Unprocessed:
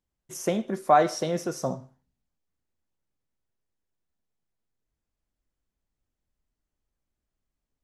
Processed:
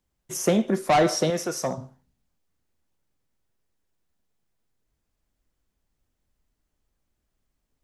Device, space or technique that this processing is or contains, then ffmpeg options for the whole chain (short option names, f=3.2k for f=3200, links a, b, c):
one-band saturation: -filter_complex "[0:a]acrossover=split=300|4400[a][b][c];[b]asoftclip=type=tanh:threshold=-23.5dB[d];[a][d][c]amix=inputs=3:normalize=0,asettb=1/sr,asplit=3[e][f][g];[e]atrim=end=1.304[h];[f]atrim=start=1.3:end=1.78,asetpts=PTS-STARTPTS,afade=t=in:d=0.004:c=qsin,afade=t=out:st=0.476:d=0.004:c=qsin,lowshelf=f=410:g=-10[i];[g]atrim=start=1.776[j];[h][i]acrossfade=d=0.004:c1=hsin:c2=qsin[k];[k][j]acrossfade=d=0.004:c1=qsin:c2=hsin,volume=7dB"